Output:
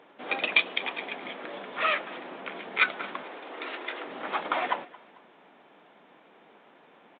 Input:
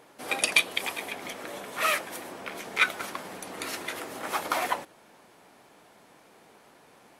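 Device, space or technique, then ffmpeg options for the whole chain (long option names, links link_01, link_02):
Bluetooth headset: -filter_complex "[0:a]asettb=1/sr,asplit=3[link_01][link_02][link_03];[link_01]atrim=end=3.234[link_04];[link_02]atrim=start=3.23:end=4.05,asetpts=PTS-STARTPTS,afade=type=in:duration=0.004:curve=qsin,afade=type=out:start_time=0.816:duration=0.004:curve=qsin,highpass=frequency=290:width=0.5412,highpass=frequency=290:width=1.3066[link_05];[link_03]atrim=start=4.046[link_06];[link_04][link_05]acrossfade=duration=0.004:curve1=hsin:curve2=qsin[link_07];[link_07][link_06]acrossfade=duration=0.004:curve1=qsin:curve2=hsin,highpass=frequency=170:width=0.5412,highpass=frequency=170:width=1.3066,aecho=1:1:222|444|666:0.0841|0.032|0.0121,aresample=8000,aresample=44100" -ar 16000 -c:a sbc -b:a 64k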